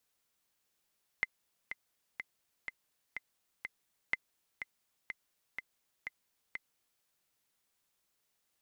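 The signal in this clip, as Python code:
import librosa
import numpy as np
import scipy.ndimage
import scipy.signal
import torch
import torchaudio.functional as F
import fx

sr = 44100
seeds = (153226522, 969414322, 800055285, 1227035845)

y = fx.click_track(sr, bpm=124, beats=6, bars=2, hz=2060.0, accent_db=9.5, level_db=-16.5)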